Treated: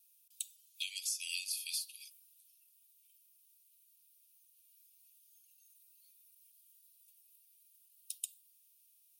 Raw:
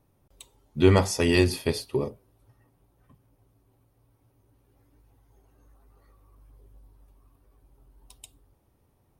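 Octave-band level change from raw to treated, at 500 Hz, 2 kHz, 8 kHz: under -40 dB, -14.5 dB, -1.5 dB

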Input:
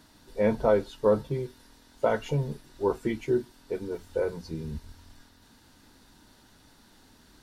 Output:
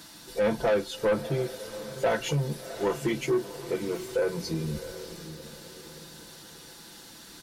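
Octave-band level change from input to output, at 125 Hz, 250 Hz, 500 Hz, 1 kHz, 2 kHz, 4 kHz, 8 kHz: +1.0 dB, 0.0 dB, -0.5 dB, 0.0 dB, +4.5 dB, +10.0 dB, no reading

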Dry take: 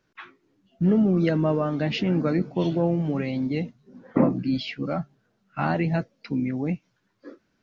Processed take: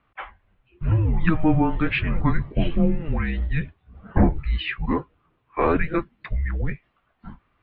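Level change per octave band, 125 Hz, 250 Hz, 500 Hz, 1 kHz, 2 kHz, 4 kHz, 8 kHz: +3.0 dB, -1.5 dB, -2.0 dB, +4.0 dB, +6.0 dB, -0.5 dB, no reading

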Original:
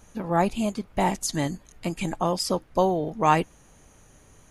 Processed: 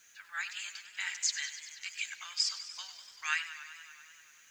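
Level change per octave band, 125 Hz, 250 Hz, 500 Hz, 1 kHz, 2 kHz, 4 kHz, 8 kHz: under -40 dB, under -40 dB, under -40 dB, -23.0 dB, 0.0 dB, +0.5 dB, -1.5 dB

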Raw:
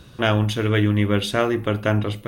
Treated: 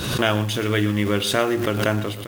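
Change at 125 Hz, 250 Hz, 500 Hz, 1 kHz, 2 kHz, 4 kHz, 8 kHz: -3.5 dB, -0.5 dB, 0.0 dB, +0.5 dB, +1.0 dB, +3.0 dB, +7.5 dB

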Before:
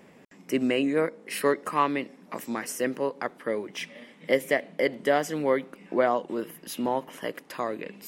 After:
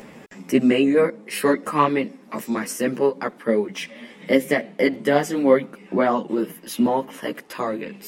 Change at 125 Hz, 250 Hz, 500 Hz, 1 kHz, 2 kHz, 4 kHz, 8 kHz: +8.0 dB, +9.0 dB, +6.0 dB, +4.5 dB, +4.0 dB, +4.5 dB, +4.5 dB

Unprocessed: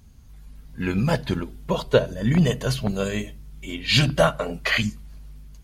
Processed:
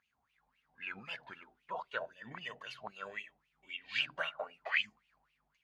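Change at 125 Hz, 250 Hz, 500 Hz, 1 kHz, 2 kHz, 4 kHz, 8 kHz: -38.5 dB, -34.0 dB, -23.0 dB, -14.0 dB, -10.0 dB, -15.0 dB, -29.5 dB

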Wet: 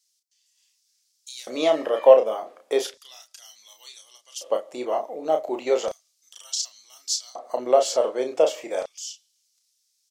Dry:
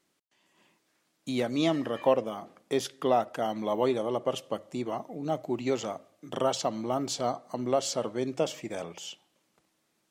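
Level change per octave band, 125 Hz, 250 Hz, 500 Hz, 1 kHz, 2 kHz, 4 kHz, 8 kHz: under -15 dB, -4.0 dB, +7.5 dB, +3.0 dB, +2.5 dB, +4.5 dB, +7.5 dB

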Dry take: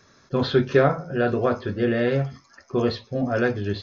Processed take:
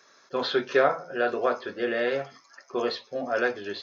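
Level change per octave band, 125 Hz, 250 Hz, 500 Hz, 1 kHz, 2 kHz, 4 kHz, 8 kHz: -22.5 dB, -10.0 dB, -3.5 dB, -0.5 dB, 0.0 dB, 0.0 dB, no reading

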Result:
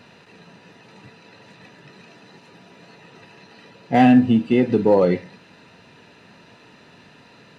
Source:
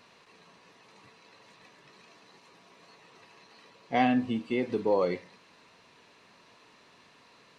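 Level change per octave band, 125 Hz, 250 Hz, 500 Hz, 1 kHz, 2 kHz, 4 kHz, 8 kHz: +16.0 dB, +13.5 dB, +10.0 dB, +8.5 dB, +7.0 dB, +6.5 dB, no reading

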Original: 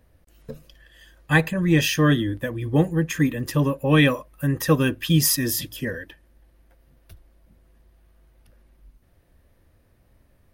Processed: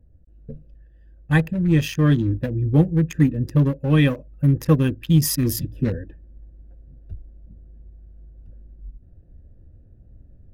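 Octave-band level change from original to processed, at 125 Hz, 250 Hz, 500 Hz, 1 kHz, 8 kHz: +4.5 dB, +2.0 dB, -2.0 dB, -5.0 dB, -4.5 dB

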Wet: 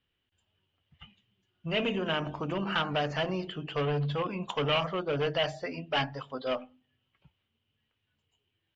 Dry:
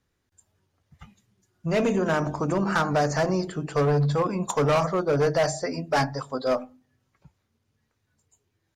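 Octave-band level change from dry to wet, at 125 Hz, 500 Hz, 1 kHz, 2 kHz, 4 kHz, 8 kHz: -8.0 dB, -7.5 dB, -7.0 dB, -3.5 dB, +4.5 dB, under -20 dB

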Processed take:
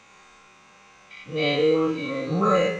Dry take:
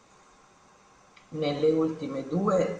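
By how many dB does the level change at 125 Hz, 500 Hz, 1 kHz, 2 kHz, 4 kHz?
+3.5 dB, +4.0 dB, +7.5 dB, +13.5 dB, +11.5 dB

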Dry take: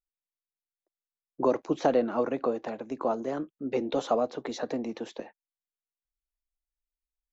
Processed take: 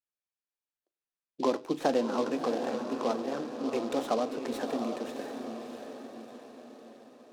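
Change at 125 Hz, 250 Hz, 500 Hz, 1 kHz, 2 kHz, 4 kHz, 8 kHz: -4.0 dB, 0.0 dB, -2.5 dB, -1.0 dB, +0.5 dB, +2.5 dB, no reading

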